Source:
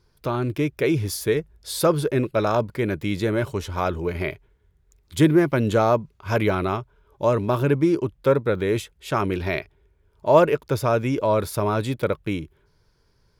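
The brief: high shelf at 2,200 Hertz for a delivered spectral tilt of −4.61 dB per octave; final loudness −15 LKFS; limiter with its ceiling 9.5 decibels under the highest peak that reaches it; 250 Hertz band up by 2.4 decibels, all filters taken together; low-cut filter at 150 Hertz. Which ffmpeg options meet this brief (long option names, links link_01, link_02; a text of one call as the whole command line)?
ffmpeg -i in.wav -af "highpass=150,equalizer=frequency=250:width_type=o:gain=4,highshelf=frequency=2200:gain=8.5,volume=8.5dB,alimiter=limit=-1.5dB:level=0:latency=1" out.wav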